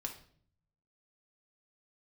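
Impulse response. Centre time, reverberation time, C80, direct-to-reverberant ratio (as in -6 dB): 15 ms, 0.55 s, 14.0 dB, 2.0 dB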